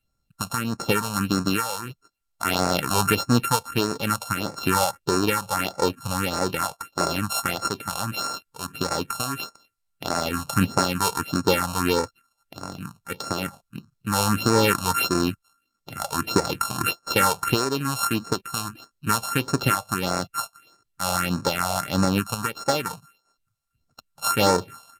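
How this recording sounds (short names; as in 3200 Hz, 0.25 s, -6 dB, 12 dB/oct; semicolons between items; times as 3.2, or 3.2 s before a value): a buzz of ramps at a fixed pitch in blocks of 32 samples; phasing stages 4, 1.6 Hz, lowest notch 310–3000 Hz; SBC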